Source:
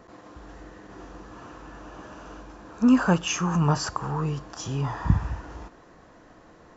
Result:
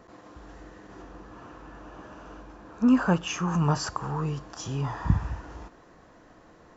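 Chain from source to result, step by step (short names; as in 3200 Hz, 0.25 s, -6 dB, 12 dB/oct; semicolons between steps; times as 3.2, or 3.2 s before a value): 1.02–3.48 high shelf 4600 Hz -7.5 dB; gain -2 dB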